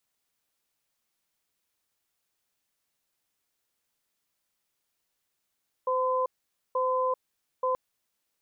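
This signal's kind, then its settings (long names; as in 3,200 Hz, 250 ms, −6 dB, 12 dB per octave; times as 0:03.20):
tone pair in a cadence 514 Hz, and 1,020 Hz, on 0.39 s, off 0.49 s, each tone −26.5 dBFS 1.88 s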